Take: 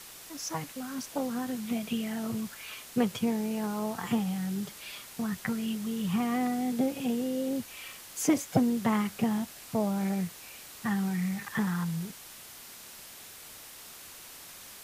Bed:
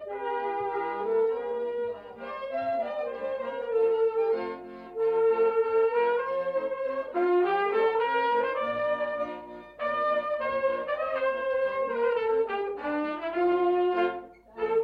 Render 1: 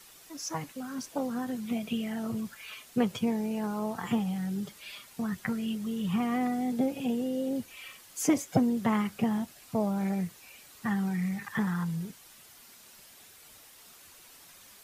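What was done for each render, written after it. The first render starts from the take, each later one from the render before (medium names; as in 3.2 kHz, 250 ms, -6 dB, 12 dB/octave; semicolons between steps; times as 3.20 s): noise reduction 8 dB, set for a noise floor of -48 dBFS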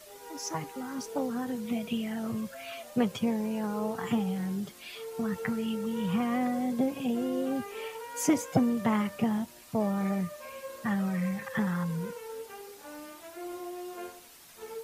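add bed -15.5 dB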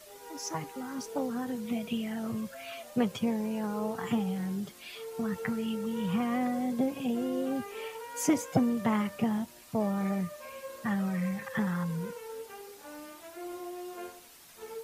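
trim -1 dB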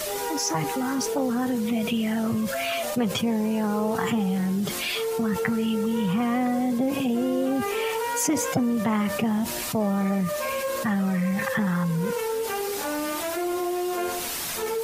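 level flattener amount 70%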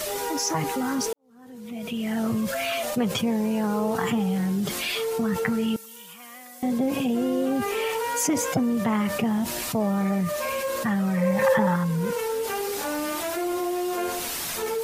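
1.13–2.21 s: fade in quadratic; 5.76–6.63 s: differentiator; 11.17–11.76 s: small resonant body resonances 570/890 Hz, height 17 dB, ringing for 50 ms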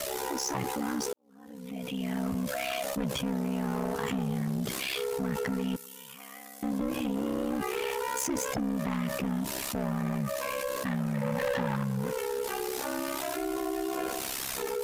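saturation -24 dBFS, distortion -12 dB; ring modulator 33 Hz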